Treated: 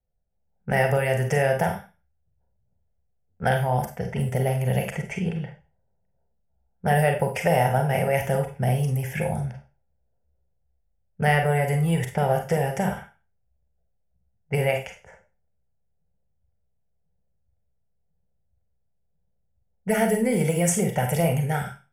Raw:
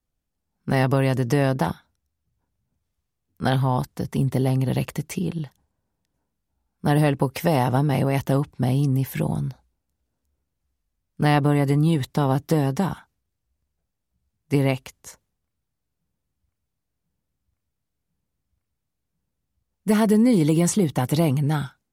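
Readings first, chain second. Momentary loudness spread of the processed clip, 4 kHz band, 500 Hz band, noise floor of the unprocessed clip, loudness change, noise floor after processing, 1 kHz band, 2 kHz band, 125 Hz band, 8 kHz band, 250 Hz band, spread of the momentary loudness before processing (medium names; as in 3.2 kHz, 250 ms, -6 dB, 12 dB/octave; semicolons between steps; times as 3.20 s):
8 LU, -3.0 dB, +1.5 dB, -80 dBFS, -2.0 dB, -71 dBFS, +1.0 dB, +4.0 dB, -2.5 dB, +2.0 dB, -6.5 dB, 10 LU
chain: bass shelf 330 Hz -5 dB; static phaser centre 1.1 kHz, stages 6; in parallel at -2 dB: compression, threshold -33 dBFS, peak gain reduction 14 dB; on the sum: level-controlled noise filter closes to 690 Hz, open at -23 dBFS; Schroeder reverb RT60 0.32 s, combs from 32 ms, DRR 4 dB; trim +1.5 dB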